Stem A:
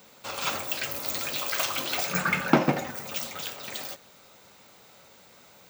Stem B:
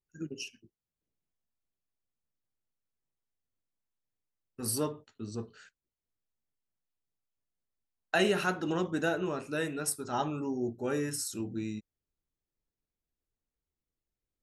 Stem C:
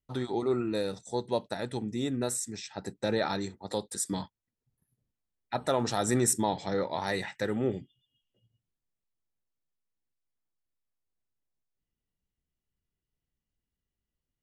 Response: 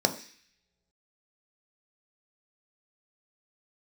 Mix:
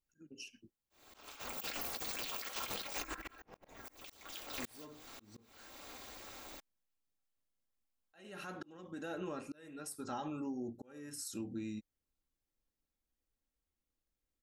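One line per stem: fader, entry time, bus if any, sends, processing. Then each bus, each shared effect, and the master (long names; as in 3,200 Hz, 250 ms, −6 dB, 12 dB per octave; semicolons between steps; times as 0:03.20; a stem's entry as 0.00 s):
+1.5 dB, 0.90 s, bus A, no send, ring modulation 140 Hz; compressor whose output falls as the input rises −36 dBFS, ratio −0.5
−0.5 dB, 0.00 s, bus A, no send, brickwall limiter −24.5 dBFS, peak gain reduction 10 dB
muted
bus A: 0.0 dB, comb filter 3.7 ms, depth 35%; downward compressor 3 to 1, threshold −40 dBFS, peak gain reduction 10 dB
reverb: not used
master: volume swells 541 ms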